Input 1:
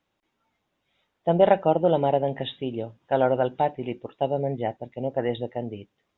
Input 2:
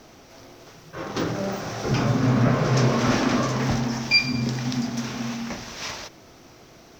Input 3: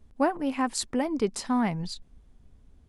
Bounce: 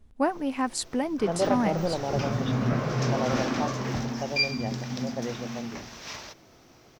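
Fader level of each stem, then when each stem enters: −8.5, −6.5, −0.5 decibels; 0.00, 0.25, 0.00 seconds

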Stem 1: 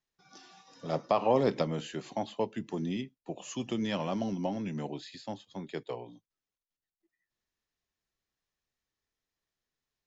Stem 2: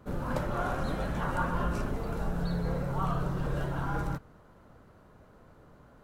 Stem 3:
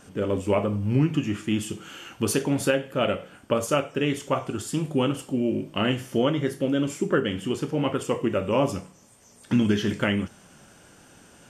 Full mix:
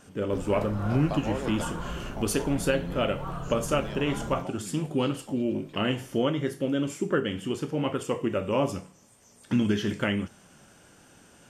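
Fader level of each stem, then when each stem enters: −7.5, −5.0, −3.0 decibels; 0.00, 0.25, 0.00 seconds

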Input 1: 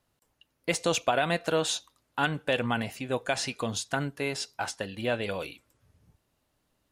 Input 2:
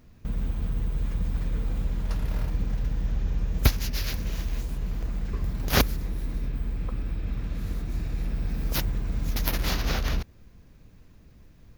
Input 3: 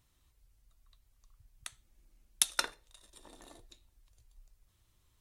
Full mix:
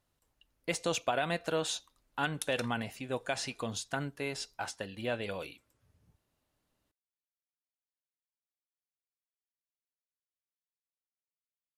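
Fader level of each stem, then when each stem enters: −5.5 dB, muted, −12.0 dB; 0.00 s, muted, 0.00 s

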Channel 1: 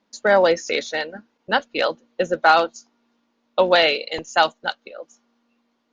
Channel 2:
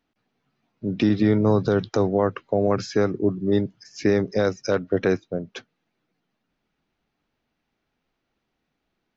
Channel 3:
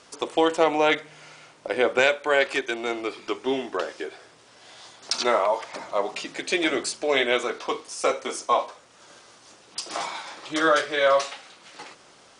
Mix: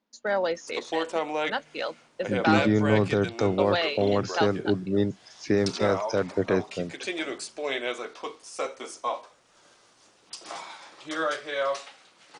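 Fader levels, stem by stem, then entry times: −10.5, −3.5, −8.0 decibels; 0.00, 1.45, 0.55 seconds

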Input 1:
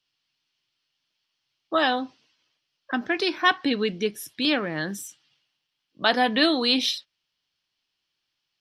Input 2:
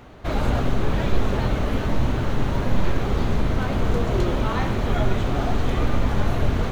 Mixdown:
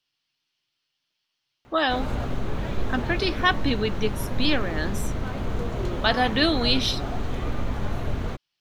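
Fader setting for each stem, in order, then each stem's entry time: −1.0, −6.5 decibels; 0.00, 1.65 seconds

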